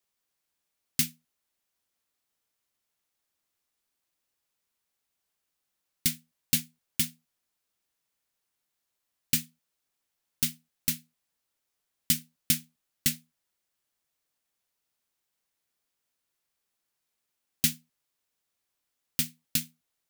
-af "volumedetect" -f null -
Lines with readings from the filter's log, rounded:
mean_volume: -38.1 dB
max_volume: -8.6 dB